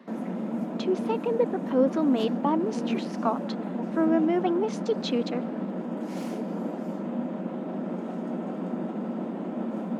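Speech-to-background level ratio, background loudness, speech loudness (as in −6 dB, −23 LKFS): 4.5 dB, −32.0 LKFS, −27.5 LKFS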